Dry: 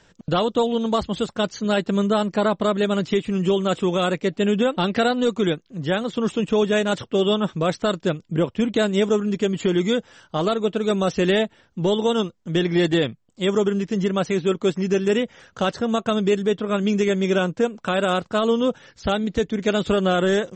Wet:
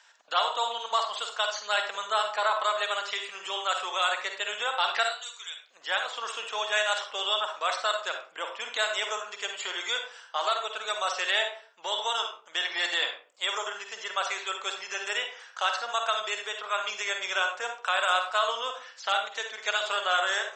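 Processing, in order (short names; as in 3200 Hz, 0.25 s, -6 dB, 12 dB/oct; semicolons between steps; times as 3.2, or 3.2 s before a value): HPF 840 Hz 24 dB/oct; 5.03–5.66 differentiator; reverb RT60 0.40 s, pre-delay 43 ms, DRR 4.5 dB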